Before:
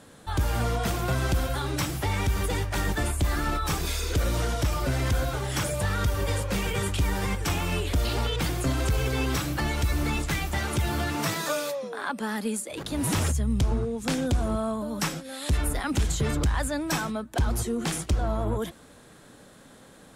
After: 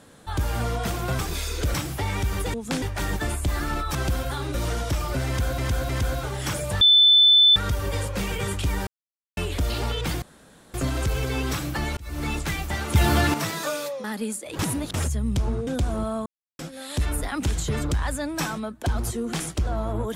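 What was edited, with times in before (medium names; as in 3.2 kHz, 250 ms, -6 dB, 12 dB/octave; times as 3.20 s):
1.19–1.78 s: swap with 3.71–4.26 s
4.99–5.30 s: loop, 3 plays
5.91 s: add tone 3.52 kHz -11.5 dBFS 0.75 s
7.22–7.72 s: mute
8.57 s: insert room tone 0.52 s
9.80–10.12 s: fade in
10.78–11.17 s: gain +8 dB
11.87–12.28 s: delete
12.83–13.18 s: reverse
13.91–14.19 s: move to 2.58 s
14.78–15.11 s: mute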